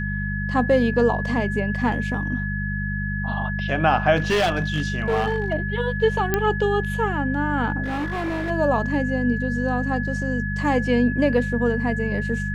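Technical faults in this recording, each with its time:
mains hum 50 Hz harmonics 4 −27 dBFS
whistle 1,700 Hz −29 dBFS
0:04.16–0:05.54: clipping −16.5 dBFS
0:06.34: click −6 dBFS
0:07.83–0:08.51: clipping −23 dBFS

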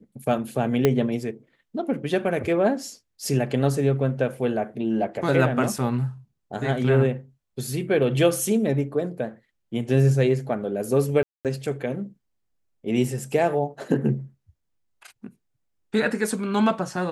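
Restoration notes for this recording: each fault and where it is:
0:00.85: click −6 dBFS
0:11.23–0:11.45: drop-out 218 ms

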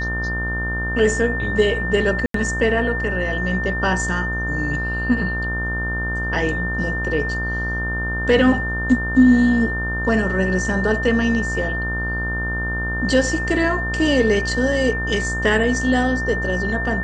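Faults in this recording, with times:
mains buzz 60 Hz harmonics 30 −26 dBFS
whistle 1,800 Hz −24 dBFS
0:02.26–0:02.34: drop-out 83 ms

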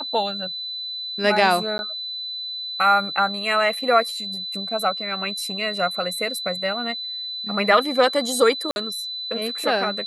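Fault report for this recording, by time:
whistle 4,000 Hz −28 dBFS
0:01.78–0:01.79: drop-out 11 ms
0:08.71–0:08.76: drop-out 51 ms

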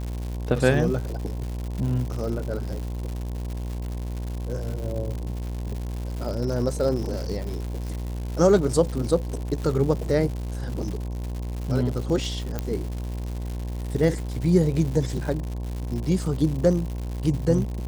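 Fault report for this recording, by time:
mains buzz 60 Hz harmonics 18 −30 dBFS
surface crackle 210 per second −31 dBFS
0:12.59: click −13 dBFS

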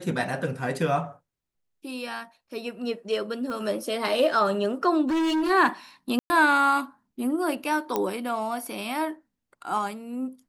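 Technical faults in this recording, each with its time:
0:03.50: click −24 dBFS
0:05.07–0:05.51: clipping −22 dBFS
0:06.19–0:06.30: drop-out 110 ms
0:07.96: click −11 dBFS

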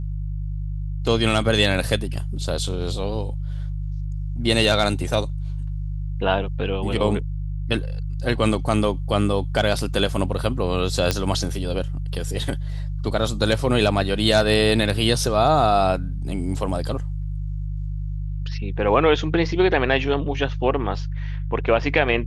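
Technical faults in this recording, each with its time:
mains hum 50 Hz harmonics 3 −27 dBFS
0:11.11: click −5 dBFS

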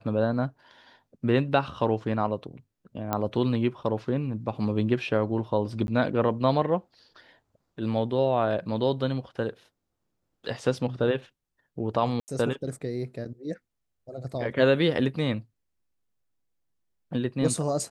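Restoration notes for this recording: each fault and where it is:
0:03.13: click −12 dBFS
0:05.87–0:05.88: drop-out 11 ms
0:12.20–0:12.28: drop-out 79 ms

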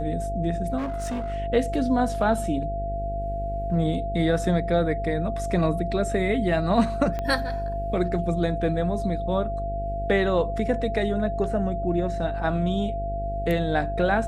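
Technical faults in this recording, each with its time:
mains buzz 50 Hz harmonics 15 −31 dBFS
whistle 680 Hz −29 dBFS
0:00.77–0:01.34: clipping −25.5 dBFS
0:07.19: click −17 dBFS

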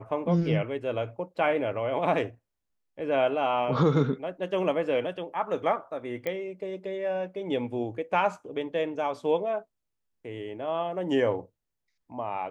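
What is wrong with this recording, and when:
0:06.27: click −18 dBFS

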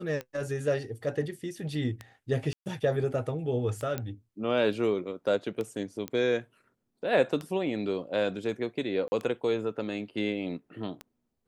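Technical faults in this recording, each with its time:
scratch tick 33 1/3 rpm −22 dBFS
0:02.53–0:02.66: drop-out 129 ms
0:03.98: click −18 dBFS
0:06.08: click −19 dBFS
0:09.08–0:09.12: drop-out 40 ms

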